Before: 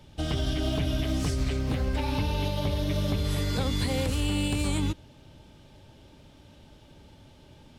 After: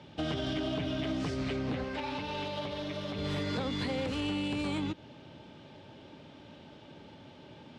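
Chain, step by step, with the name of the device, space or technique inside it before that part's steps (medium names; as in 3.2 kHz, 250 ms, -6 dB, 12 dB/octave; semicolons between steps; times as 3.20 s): AM radio (band-pass 160–3700 Hz; compression, threshold -33 dBFS, peak gain reduction 7.5 dB; saturation -29.5 dBFS, distortion -20 dB); 1.84–3.16 s: bass shelf 440 Hz -7 dB; trim +4.5 dB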